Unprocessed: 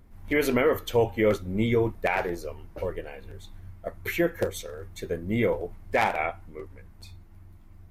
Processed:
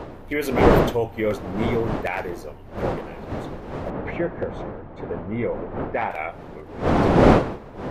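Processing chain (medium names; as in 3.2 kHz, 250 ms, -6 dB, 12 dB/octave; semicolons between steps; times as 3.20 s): wind noise 570 Hz -23 dBFS; 3.90–6.11 s: low-pass 2 kHz 12 dB/octave; trim -1 dB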